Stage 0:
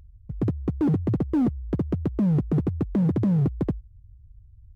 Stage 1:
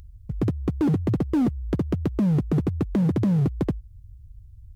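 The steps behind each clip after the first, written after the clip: high shelf 2200 Hz +9 dB; in parallel at +1.5 dB: compressor, threshold -30 dBFS, peak gain reduction 10 dB; on the sum: gain -2.5 dB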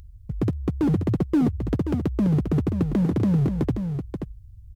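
echo 0.531 s -7 dB

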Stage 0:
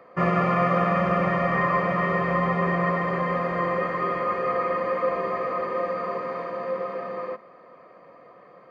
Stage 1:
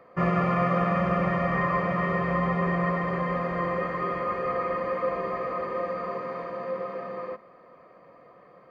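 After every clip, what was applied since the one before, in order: low shelf 110 Hz +10 dB; gain -3.5 dB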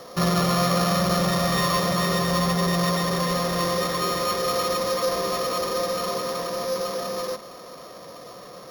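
sample sorter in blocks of 8 samples; power-law curve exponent 0.7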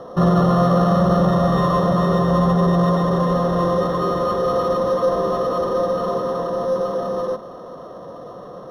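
running mean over 19 samples; gain +7.5 dB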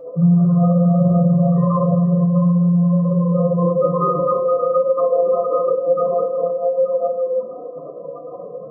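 spectral contrast raised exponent 2.9; FDN reverb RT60 0.63 s, low-frequency decay 1.45×, high-frequency decay 0.55×, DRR -2 dB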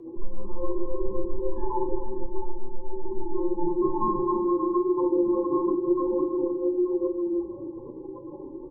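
frequency shift -170 Hz; echo 0.309 s -13.5 dB; gain -7 dB

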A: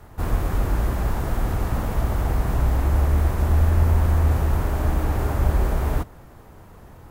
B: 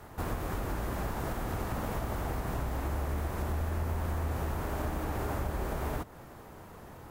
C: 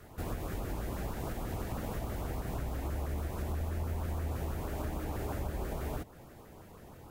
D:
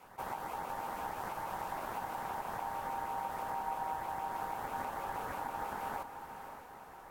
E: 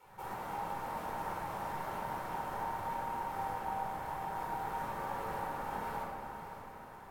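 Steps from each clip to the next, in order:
compressor 2.5:1, threshold -27 dBFS, peak gain reduction 9.5 dB; low shelf 100 Hz -11 dB
LFO notch saw up 6.2 Hz 770–2100 Hz; gain -2.5 dB
ring modulator 860 Hz; diffused feedback echo 0.561 s, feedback 41%, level -8.5 dB; attack slew limiter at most 580 dB/s; gain -1 dB
shoebox room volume 1900 m³, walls mixed, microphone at 4.4 m; gain -7 dB

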